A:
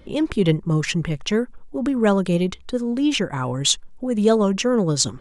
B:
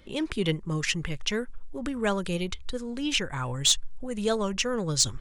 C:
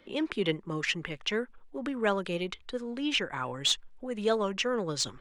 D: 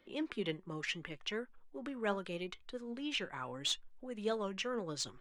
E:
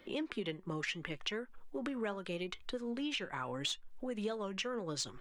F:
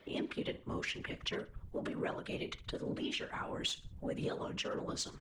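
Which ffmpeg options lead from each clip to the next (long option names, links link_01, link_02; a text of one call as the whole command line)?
ffmpeg -i in.wav -filter_complex "[0:a]asubboost=boost=7:cutoff=83,acrossover=split=1400[link_01][link_02];[link_02]acontrast=89[link_03];[link_01][link_03]amix=inputs=2:normalize=0,volume=-8.5dB" out.wav
ffmpeg -i in.wav -filter_complex "[0:a]acrossover=split=200 3900:gain=0.141 1 0.251[link_01][link_02][link_03];[link_01][link_02][link_03]amix=inputs=3:normalize=0" out.wav
ffmpeg -i in.wav -af "flanger=delay=2.7:depth=2.7:regen=82:speed=0.78:shape=sinusoidal,volume=-4dB" out.wav
ffmpeg -i in.wav -af "acompressor=threshold=-44dB:ratio=6,volume=8.5dB" out.wav
ffmpeg -i in.wav -af "afftfilt=real='hypot(re,im)*cos(2*PI*random(0))':imag='hypot(re,im)*sin(2*PI*random(1))':win_size=512:overlap=0.75,aecho=1:1:61|122|183:0.126|0.0441|0.0154,volume=5.5dB" out.wav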